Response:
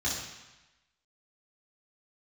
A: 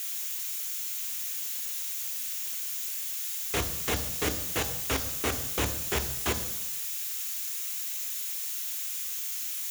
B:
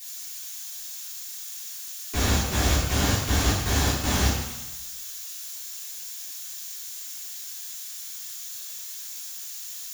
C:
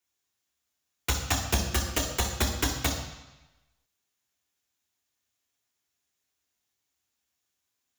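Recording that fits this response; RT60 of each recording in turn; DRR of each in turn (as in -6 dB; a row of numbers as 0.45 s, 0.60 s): B; 1.0 s, 1.0 s, 1.0 s; 7.5 dB, -8.0 dB, 0.5 dB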